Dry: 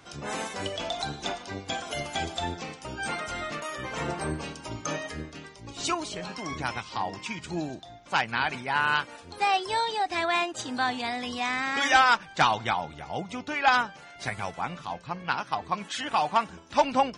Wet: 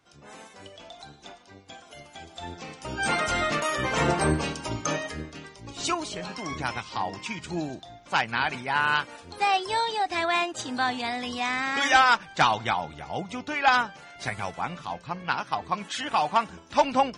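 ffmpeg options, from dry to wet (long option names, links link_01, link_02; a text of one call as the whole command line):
ffmpeg -i in.wav -af "volume=8dB,afade=type=in:start_time=2.28:duration=0.47:silence=0.251189,afade=type=in:start_time=2.75:duration=0.48:silence=0.354813,afade=type=out:start_time=4.27:duration=0.9:silence=0.446684" out.wav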